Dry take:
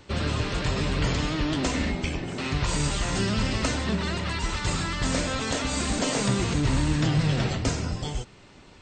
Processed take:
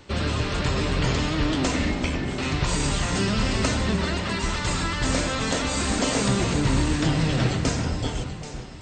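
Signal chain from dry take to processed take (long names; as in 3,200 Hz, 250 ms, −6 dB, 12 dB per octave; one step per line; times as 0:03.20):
mains-hum notches 50/100/150 Hz
delay that swaps between a low-pass and a high-pass 391 ms, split 2,000 Hz, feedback 58%, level −7 dB
level +2 dB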